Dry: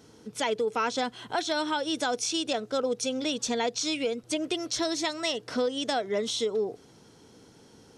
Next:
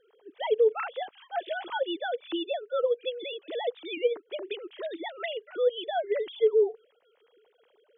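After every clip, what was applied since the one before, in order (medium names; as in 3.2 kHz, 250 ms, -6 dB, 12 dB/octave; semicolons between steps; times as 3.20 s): formants replaced by sine waves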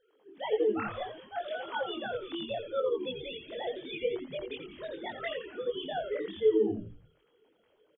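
hum notches 50/100/150/200/250/300/350/400/450 Hz; chorus voices 4, 0.71 Hz, delay 23 ms, depth 2.7 ms; on a send: frequency-shifting echo 86 ms, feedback 45%, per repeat -110 Hz, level -8 dB; on the sum: trim -1 dB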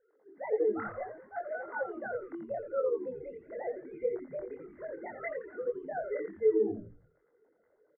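rippled Chebyshev low-pass 2.1 kHz, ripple 6 dB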